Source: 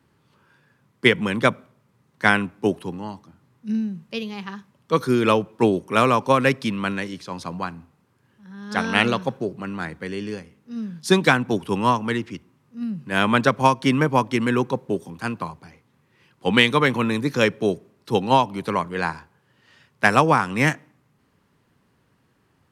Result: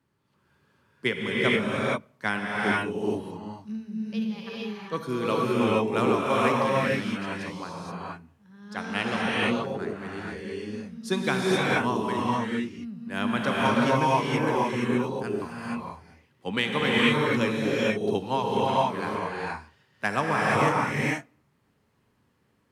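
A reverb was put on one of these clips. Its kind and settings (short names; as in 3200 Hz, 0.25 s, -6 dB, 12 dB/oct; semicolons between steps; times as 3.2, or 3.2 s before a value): non-linear reverb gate 0.5 s rising, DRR -5.5 dB; gain -11 dB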